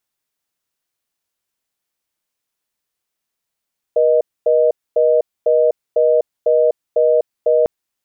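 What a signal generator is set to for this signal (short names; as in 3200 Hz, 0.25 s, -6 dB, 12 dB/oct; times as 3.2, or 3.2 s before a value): call progress tone reorder tone, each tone -13 dBFS 3.70 s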